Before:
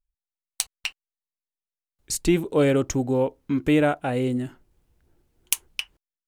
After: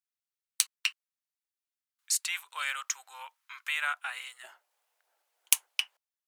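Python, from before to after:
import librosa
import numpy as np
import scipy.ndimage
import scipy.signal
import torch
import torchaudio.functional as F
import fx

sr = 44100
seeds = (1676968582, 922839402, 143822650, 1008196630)

y = fx.steep_highpass(x, sr, hz=fx.steps((0.0, 1100.0), (4.43, 610.0)), slope=36)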